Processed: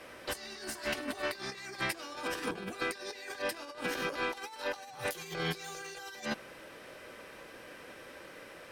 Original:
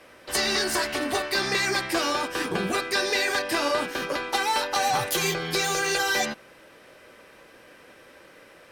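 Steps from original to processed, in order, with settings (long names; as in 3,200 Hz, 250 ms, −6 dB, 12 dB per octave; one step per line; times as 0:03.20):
compressor whose output falls as the input rises −32 dBFS, ratio −0.5
level −5.5 dB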